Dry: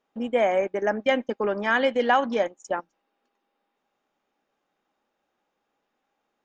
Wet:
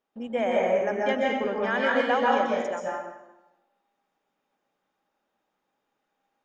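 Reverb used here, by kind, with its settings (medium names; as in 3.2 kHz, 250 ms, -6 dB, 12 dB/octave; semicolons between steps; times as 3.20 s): plate-style reverb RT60 0.98 s, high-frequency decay 0.8×, pre-delay 115 ms, DRR -3.5 dB; trim -6 dB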